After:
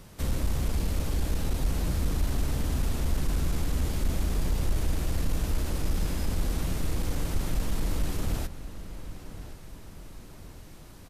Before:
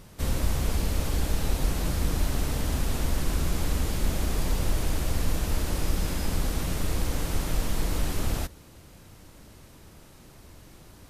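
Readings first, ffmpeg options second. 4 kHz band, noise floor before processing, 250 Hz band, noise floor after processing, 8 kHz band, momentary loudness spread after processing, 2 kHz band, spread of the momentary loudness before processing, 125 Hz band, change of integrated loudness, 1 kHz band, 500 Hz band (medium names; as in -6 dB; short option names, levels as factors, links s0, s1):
-4.5 dB, -51 dBFS, -1.5 dB, -47 dBFS, -4.5 dB, 17 LU, -4.5 dB, 2 LU, -0.5 dB, -1.5 dB, -4.0 dB, -3.0 dB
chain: -filter_complex "[0:a]acrossover=split=380[s0][s1];[s1]acompressor=threshold=0.0141:ratio=6[s2];[s0][s2]amix=inputs=2:normalize=0,asoftclip=type=tanh:threshold=0.141,asplit=2[s3][s4];[s4]adelay=1073,lowpass=f=3500:p=1,volume=0.224,asplit=2[s5][s6];[s6]adelay=1073,lowpass=f=3500:p=1,volume=0.48,asplit=2[s7][s8];[s8]adelay=1073,lowpass=f=3500:p=1,volume=0.48,asplit=2[s9][s10];[s10]adelay=1073,lowpass=f=3500:p=1,volume=0.48,asplit=2[s11][s12];[s12]adelay=1073,lowpass=f=3500:p=1,volume=0.48[s13];[s3][s5][s7][s9][s11][s13]amix=inputs=6:normalize=0"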